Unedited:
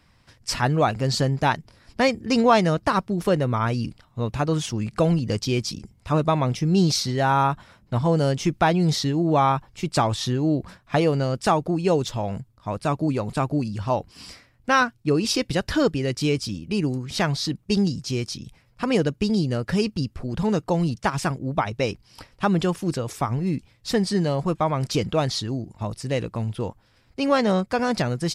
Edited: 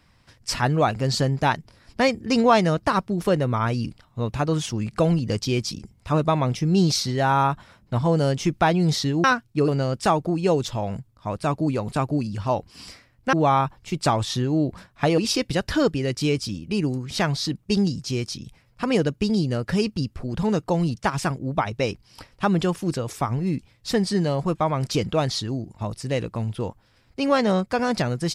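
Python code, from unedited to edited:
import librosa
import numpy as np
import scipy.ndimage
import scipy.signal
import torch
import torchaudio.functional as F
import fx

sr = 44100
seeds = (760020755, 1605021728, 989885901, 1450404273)

y = fx.edit(x, sr, fx.swap(start_s=9.24, length_s=1.85, other_s=14.74, other_length_s=0.44), tone=tone)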